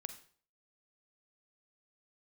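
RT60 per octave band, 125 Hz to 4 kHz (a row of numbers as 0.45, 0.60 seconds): 0.50, 0.50, 0.50, 0.45, 0.45, 0.40 seconds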